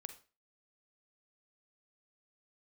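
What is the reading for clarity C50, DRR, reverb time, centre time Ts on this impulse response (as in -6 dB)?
11.0 dB, 8.5 dB, 0.35 s, 8 ms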